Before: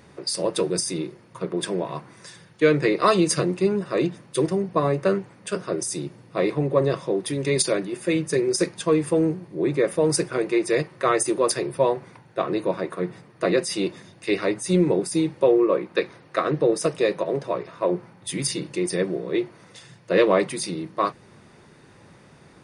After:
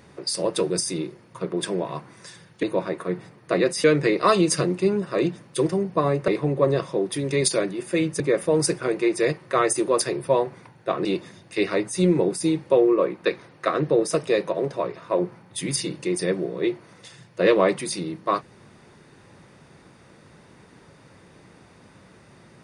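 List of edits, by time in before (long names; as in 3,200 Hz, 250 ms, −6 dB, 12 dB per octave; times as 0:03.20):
0:05.07–0:06.42: remove
0:08.34–0:09.70: remove
0:12.55–0:13.76: move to 0:02.63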